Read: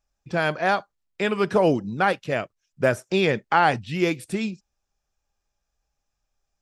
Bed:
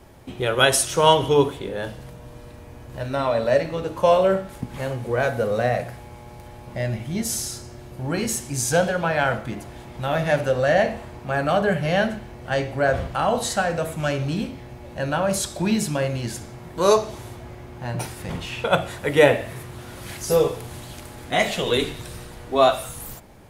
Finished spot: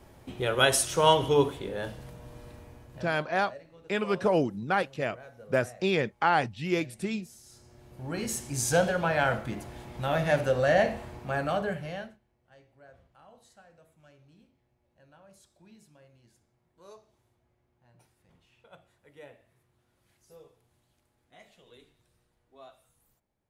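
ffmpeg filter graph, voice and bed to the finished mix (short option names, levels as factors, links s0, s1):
-filter_complex "[0:a]adelay=2700,volume=0.531[s0];[1:a]volume=6.68,afade=t=out:st=2.54:d=0.65:silence=0.0891251,afade=t=in:st=7.43:d=1.29:silence=0.0794328,afade=t=out:st=11.12:d=1.06:silence=0.0316228[s1];[s0][s1]amix=inputs=2:normalize=0"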